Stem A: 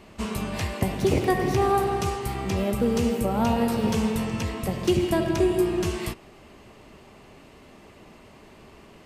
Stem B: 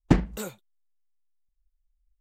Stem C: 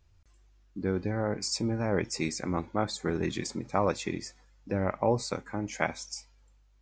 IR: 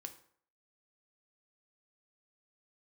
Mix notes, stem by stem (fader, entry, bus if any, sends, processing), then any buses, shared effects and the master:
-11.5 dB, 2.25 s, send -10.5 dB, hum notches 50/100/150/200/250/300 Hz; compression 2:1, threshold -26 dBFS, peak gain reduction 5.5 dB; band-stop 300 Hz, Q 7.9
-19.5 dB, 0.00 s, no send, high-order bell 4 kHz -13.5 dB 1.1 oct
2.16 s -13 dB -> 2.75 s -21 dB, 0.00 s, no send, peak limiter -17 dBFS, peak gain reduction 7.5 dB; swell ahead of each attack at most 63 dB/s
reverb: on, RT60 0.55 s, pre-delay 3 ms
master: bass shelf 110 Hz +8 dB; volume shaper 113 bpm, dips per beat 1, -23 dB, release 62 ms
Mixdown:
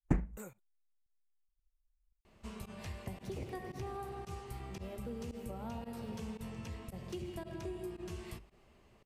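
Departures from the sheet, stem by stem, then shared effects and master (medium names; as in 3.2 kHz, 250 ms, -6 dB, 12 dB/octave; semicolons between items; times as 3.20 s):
stem A -11.5 dB -> -18.0 dB; stem B -19.5 dB -> -13.5 dB; stem C: muted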